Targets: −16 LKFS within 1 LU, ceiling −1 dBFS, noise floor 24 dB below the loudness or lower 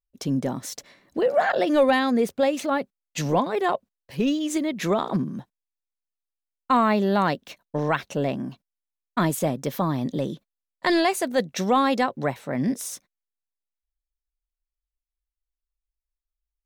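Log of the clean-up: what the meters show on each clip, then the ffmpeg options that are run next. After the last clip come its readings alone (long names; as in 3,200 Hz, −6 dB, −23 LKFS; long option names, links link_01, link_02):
integrated loudness −24.5 LKFS; sample peak −10.0 dBFS; target loudness −16.0 LKFS
→ -af "volume=8.5dB"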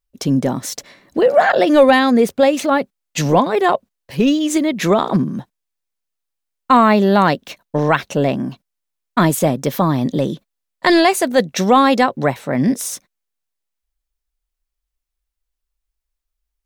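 integrated loudness −16.0 LKFS; sample peak −1.5 dBFS; background noise floor −80 dBFS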